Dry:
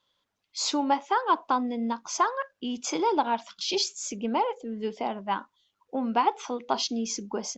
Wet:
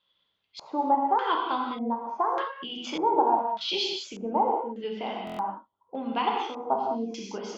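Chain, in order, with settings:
reverb whose tail is shaped and stops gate 230 ms flat, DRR −1 dB
auto-filter low-pass square 0.84 Hz 820–3,300 Hz
buffer that repeats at 0:05.25, samples 1,024, times 5
level −5.5 dB

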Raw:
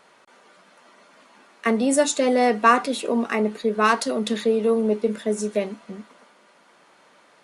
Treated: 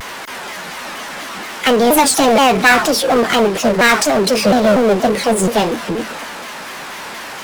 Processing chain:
formants moved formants +5 semitones
power curve on the samples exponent 0.5
pitch modulation by a square or saw wave saw down 4.2 Hz, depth 250 cents
level +1.5 dB

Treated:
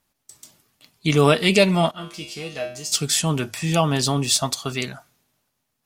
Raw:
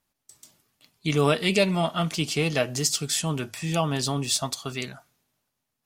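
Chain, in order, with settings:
0:01.91–0:02.92: tuned comb filter 69 Hz, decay 0.47 s, harmonics odd, mix 90%
level +5.5 dB

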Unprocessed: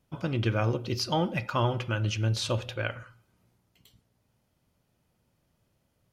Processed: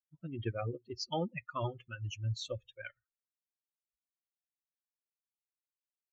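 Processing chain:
spectral dynamics exaggerated over time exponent 3
downsampling to 16,000 Hz
dynamic equaliser 470 Hz, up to +4 dB, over −44 dBFS, Q 1.9
level −5.5 dB

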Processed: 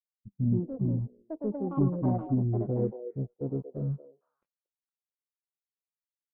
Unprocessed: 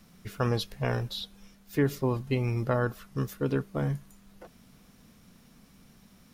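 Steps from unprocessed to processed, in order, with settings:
samples sorted by size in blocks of 32 samples
elliptic band-stop filter 630–4,400 Hz
dead-zone distortion −45 dBFS
low-pass filter sweep 230 Hz → 13,000 Hz, 0:02.22–0:06.07
echo through a band-pass that steps 231 ms, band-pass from 490 Hz, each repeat 1.4 octaves, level −6 dB
soft clipping −20.5 dBFS, distortion −17 dB
delay with pitch and tempo change per echo 256 ms, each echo +7 semitones, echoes 2
every bin expanded away from the loudest bin 1.5 to 1
level +2.5 dB

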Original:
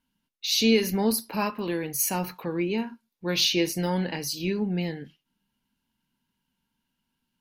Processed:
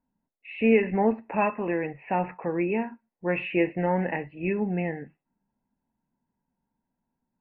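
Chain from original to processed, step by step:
low-pass that shuts in the quiet parts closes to 920 Hz, open at −21 dBFS
Chebyshev low-pass with heavy ripple 2,700 Hz, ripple 9 dB
level +7.5 dB

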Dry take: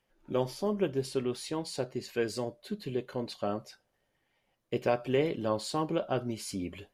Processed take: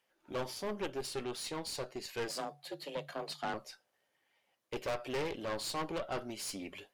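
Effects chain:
high-pass filter 650 Hz 6 dB per octave
harmonic generator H 4 −11 dB, 6 −9 dB, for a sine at −16.5 dBFS
0:02.28–0:03.54: frequency shifter +140 Hz
soft clipping −31.5 dBFS, distortion −7 dB
level +1 dB

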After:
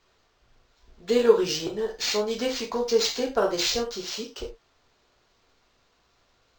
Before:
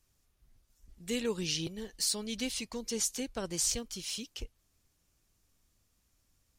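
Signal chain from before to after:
low-pass with resonance 7,000 Hz, resonance Q 2.4
flat-topped bell 740 Hz +13.5 dB 2.5 octaves
bit-depth reduction 12 bits, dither triangular
reverb whose tail is shaped and stops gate 120 ms falling, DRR −0.5 dB
linearly interpolated sample-rate reduction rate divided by 4×

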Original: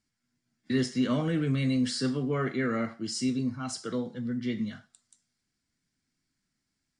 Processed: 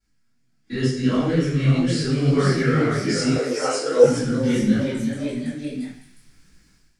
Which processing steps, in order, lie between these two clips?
feedback echo with a high-pass in the loop 86 ms, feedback 75%, high-pass 820 Hz, level −13 dB
rectangular room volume 41 cubic metres, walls mixed, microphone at 3.1 metres
delay with pitch and tempo change per echo 618 ms, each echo +1 semitone, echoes 3, each echo −6 dB
automatic gain control gain up to 14 dB
0:03.36–0:04.04: high-pass with resonance 520 Hz, resonance Q 4
micro pitch shift up and down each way 58 cents
level −3.5 dB

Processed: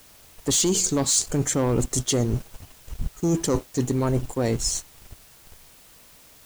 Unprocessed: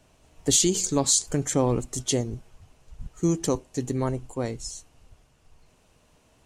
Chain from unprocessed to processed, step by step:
leveller curve on the samples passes 2
reversed playback
downward compressor 6 to 1, threshold −25 dBFS, peak gain reduction 11 dB
reversed playback
background noise white −57 dBFS
level +5 dB

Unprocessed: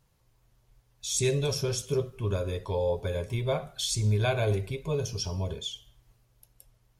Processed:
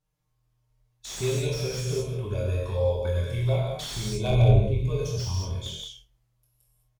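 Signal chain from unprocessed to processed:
0:04.30–0:04.79: RIAA equalisation playback
noise gate −45 dBFS, range −12 dB
dynamic equaliser 170 Hz, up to −4 dB, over −37 dBFS, Q 1.6
in parallel at −3 dB: downward compressor 6 to 1, threshold −30 dBFS, peak gain reduction 16.5 dB
on the sum: flanger swept by the level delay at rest 6.6 ms, full sweep at −21 dBFS
ambience of single reflections 24 ms −6 dB, 48 ms −9.5 dB
reverb whose tail is shaped and stops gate 240 ms flat, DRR −1.5 dB
slew-rate limiting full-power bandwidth 140 Hz
level −4 dB

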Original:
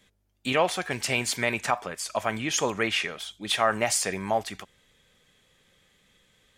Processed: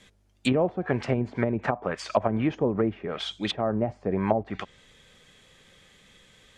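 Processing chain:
treble cut that deepens with the level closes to 380 Hz, closed at −23 dBFS
low-pass filter 9,800 Hz 12 dB per octave
level +7.5 dB

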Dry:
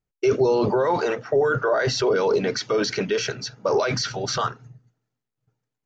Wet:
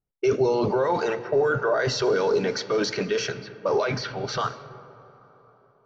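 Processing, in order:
0:03.39–0:04.29: low-pass filter 4,200 Hz 12 dB per octave
dense smooth reverb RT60 3.9 s, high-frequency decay 0.85×, DRR 13 dB
low-pass that shuts in the quiet parts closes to 1,400 Hz, open at −17 dBFS
level −2 dB

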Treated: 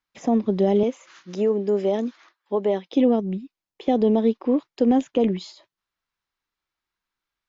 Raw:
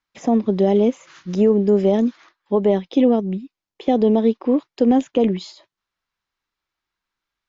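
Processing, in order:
0:00.83–0:02.93: Bessel high-pass filter 330 Hz, order 2
level −3 dB

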